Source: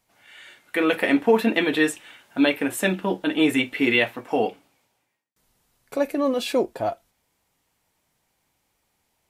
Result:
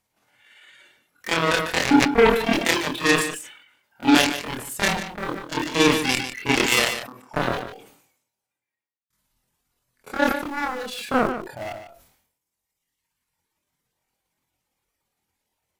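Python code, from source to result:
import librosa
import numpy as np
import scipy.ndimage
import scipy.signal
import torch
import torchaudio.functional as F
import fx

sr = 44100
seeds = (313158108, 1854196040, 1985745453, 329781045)

p1 = fx.notch(x, sr, hz=680.0, q=19.0)
p2 = fx.dereverb_blind(p1, sr, rt60_s=1.1)
p3 = fx.dynamic_eq(p2, sr, hz=910.0, q=2.0, threshold_db=-36.0, ratio=4.0, max_db=-3)
p4 = np.where(np.abs(p3) >= 10.0 ** (-27.0 / 20.0), p3, 0.0)
p5 = p3 + F.gain(torch.from_numpy(p4), -3.0).numpy()
p6 = fx.cheby_harmonics(p5, sr, harmonics=(5, 7), levels_db=(-28, -10), full_scale_db=-3.0)
p7 = fx.stretch_grains(p6, sr, factor=1.7, grain_ms=115.0)
p8 = p7 + fx.echo_single(p7, sr, ms=148, db=-12.5, dry=0)
p9 = fx.sustainer(p8, sr, db_per_s=75.0)
y = F.gain(torch.from_numpy(p9), -3.0).numpy()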